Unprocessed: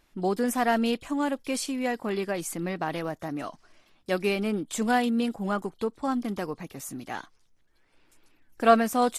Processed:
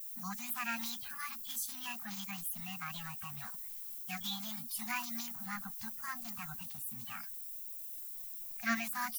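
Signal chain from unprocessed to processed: coarse spectral quantiser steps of 30 dB; Chebyshev band-stop 230–740 Hz, order 5; treble shelf 4.4 kHz -6.5 dB; added noise violet -50 dBFS; pre-emphasis filter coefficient 0.8; formant shift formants +6 st; trim +1 dB

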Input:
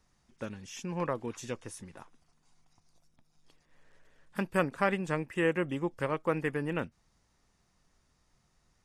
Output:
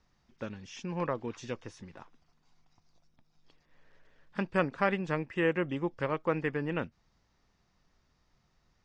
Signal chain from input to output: low-pass 5.6 kHz 24 dB/octave

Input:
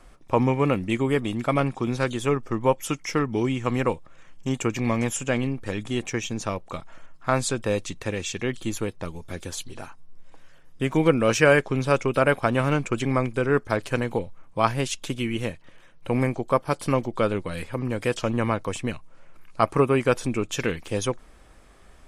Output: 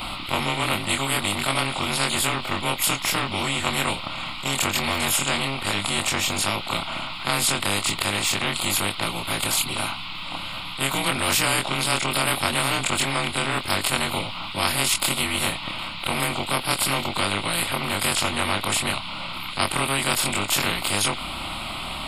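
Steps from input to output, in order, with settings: short-time spectra conjugated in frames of 59 ms; band noise 880–4700 Hz -63 dBFS; static phaser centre 1.7 kHz, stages 6; spectrum-flattening compressor 4:1; trim +6 dB

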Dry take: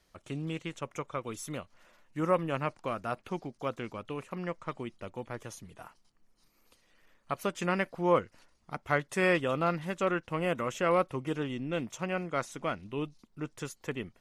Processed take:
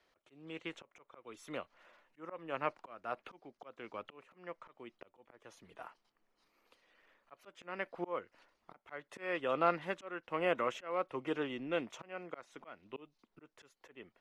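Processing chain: slow attack 428 ms; three-band isolator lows -16 dB, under 290 Hz, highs -15 dB, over 4 kHz

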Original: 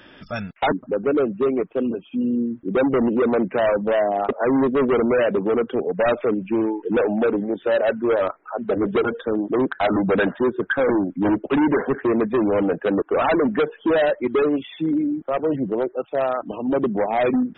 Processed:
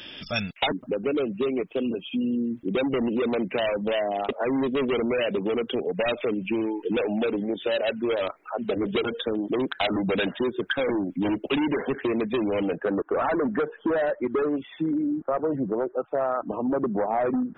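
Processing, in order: compression, threshold -23 dBFS, peak gain reduction 7.5 dB; resonant high shelf 2.1 kHz +10 dB, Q 1.5, from 12.77 s -6 dB, from 14.98 s -13.5 dB

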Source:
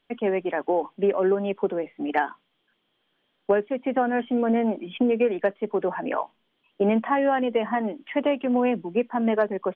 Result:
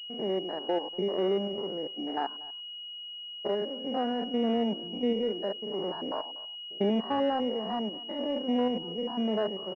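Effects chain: spectrogram pixelated in time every 100 ms; speakerphone echo 240 ms, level -18 dB; class-D stage that switches slowly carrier 2.9 kHz; trim -4.5 dB

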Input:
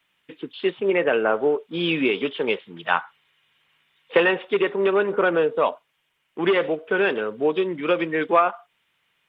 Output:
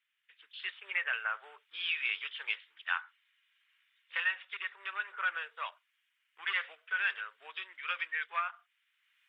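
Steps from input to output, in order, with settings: level rider gain up to 13 dB; ladder high-pass 1.3 kHz, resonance 35%; trim -8.5 dB

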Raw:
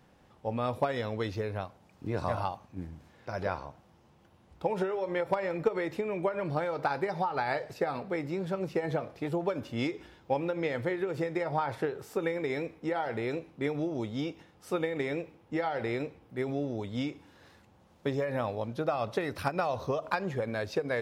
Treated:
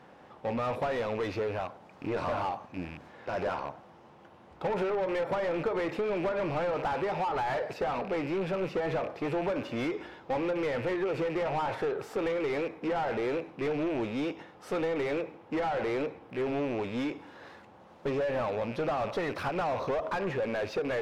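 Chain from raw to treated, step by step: rattle on loud lows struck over -44 dBFS, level -38 dBFS; overdrive pedal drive 27 dB, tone 1 kHz, clips at -15.5 dBFS; trim -5.5 dB

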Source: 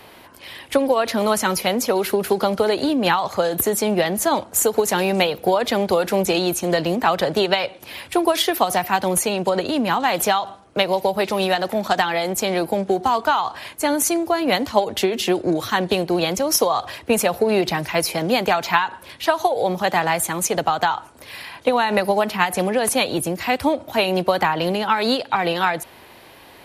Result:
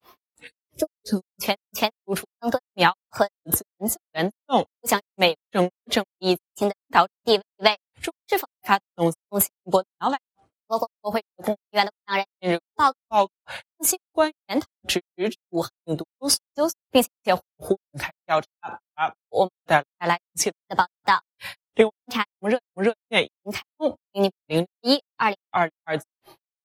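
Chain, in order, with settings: time-frequency box 0.45–1.56 s, 560–4300 Hz -14 dB; granulator 184 ms, grains 2.9 per s, spray 294 ms, pitch spread up and down by 3 st; spectral noise reduction 13 dB; trim +2.5 dB

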